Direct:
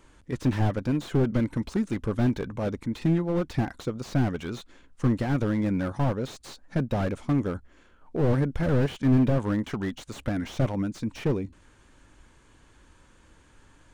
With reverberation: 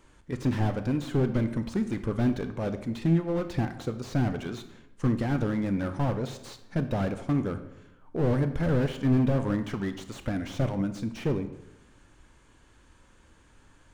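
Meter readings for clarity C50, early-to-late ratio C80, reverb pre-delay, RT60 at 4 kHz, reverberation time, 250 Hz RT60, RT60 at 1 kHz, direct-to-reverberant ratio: 11.0 dB, 14.0 dB, 22 ms, 0.60 s, 0.90 s, 1.0 s, 0.85 s, 9.0 dB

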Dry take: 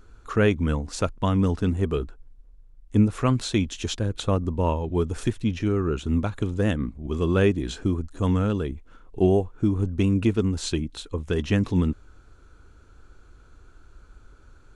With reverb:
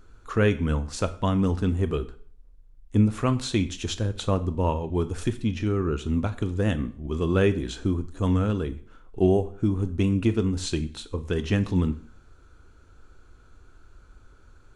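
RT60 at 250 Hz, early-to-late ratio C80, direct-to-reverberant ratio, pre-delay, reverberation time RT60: 0.45 s, 20.0 dB, 10.0 dB, 4 ms, 0.50 s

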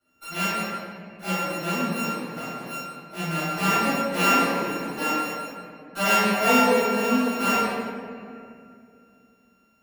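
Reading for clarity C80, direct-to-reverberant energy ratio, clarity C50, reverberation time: −2.5 dB, −19.0 dB, −5.5 dB, 2.4 s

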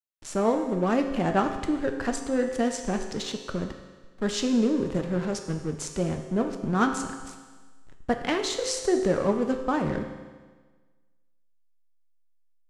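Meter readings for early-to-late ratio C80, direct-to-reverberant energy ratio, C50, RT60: 8.5 dB, 4.5 dB, 7.0 dB, 1.4 s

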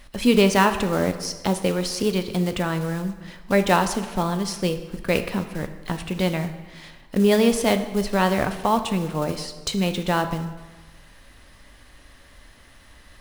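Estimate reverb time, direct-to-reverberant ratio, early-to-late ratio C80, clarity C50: 1.3 s, 8.0 dB, 12.5 dB, 10.5 dB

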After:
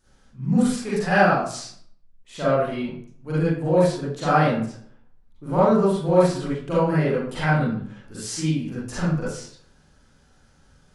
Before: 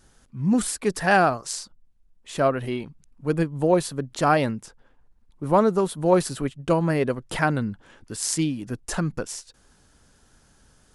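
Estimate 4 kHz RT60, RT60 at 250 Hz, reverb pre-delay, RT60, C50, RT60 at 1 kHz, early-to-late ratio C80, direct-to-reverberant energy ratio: 0.40 s, 0.60 s, 36 ms, 0.55 s, −4.0 dB, 0.55 s, 4.0 dB, −11.0 dB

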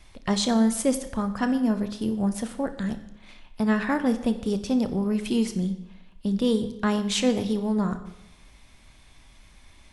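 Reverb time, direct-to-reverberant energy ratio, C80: 0.85 s, 9.0 dB, 14.0 dB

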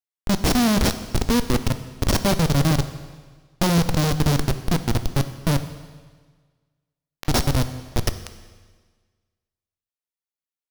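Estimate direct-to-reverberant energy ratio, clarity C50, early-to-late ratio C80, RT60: 10.0 dB, 11.5 dB, 13.0 dB, 1.5 s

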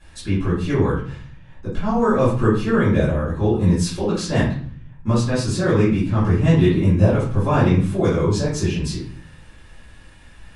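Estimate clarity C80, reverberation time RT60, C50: 8.5 dB, 0.50 s, 3.0 dB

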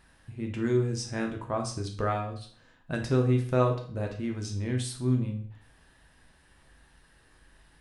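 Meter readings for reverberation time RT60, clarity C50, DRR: 0.50 s, 8.5 dB, 1.5 dB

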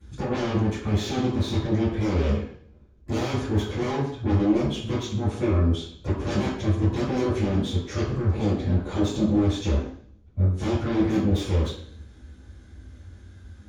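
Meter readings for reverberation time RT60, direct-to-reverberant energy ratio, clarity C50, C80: 0.55 s, −14.0 dB, 3.0 dB, 6.0 dB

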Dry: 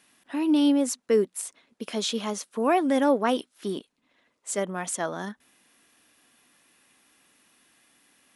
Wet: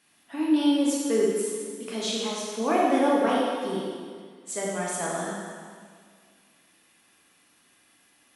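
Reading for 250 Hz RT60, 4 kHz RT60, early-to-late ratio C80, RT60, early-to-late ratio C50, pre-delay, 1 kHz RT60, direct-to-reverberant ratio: 2.0 s, 1.8 s, 0.5 dB, 1.9 s, −1.5 dB, 5 ms, 1.9 s, −5.5 dB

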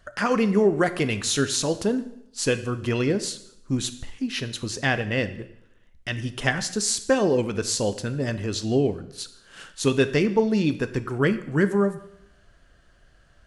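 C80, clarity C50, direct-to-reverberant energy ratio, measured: 16.0 dB, 13.5 dB, 10.5 dB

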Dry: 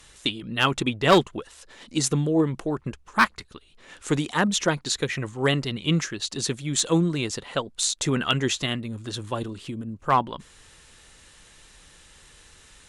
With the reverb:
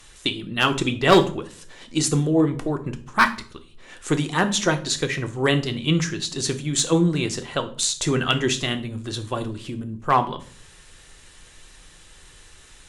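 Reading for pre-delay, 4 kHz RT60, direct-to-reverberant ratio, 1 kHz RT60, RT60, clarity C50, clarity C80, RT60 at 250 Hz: 3 ms, 0.35 s, 6.5 dB, 0.45 s, 0.50 s, 14.5 dB, 19.5 dB, 0.60 s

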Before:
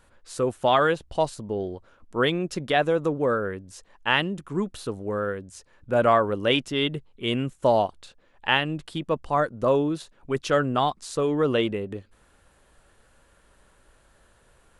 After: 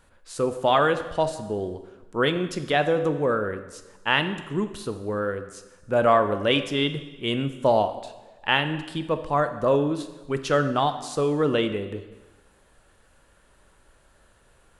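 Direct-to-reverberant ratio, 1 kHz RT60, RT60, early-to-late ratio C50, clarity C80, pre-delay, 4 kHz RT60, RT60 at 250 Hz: 9.0 dB, 1.2 s, 1.2 s, 11.0 dB, 12.5 dB, 8 ms, 1.1 s, 1.2 s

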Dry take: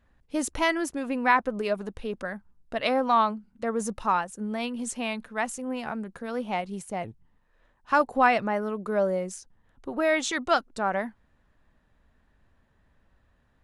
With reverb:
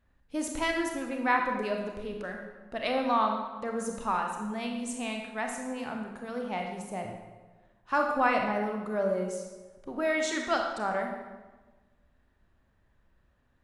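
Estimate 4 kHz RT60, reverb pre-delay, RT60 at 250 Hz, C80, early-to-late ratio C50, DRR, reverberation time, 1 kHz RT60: 0.95 s, 26 ms, 1.4 s, 6.0 dB, 4.0 dB, 2.0 dB, 1.3 s, 1.2 s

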